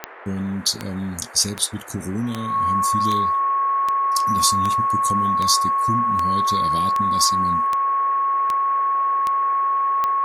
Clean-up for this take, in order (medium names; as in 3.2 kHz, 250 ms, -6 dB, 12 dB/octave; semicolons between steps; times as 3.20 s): de-click; band-stop 1.1 kHz, Q 30; noise print and reduce 30 dB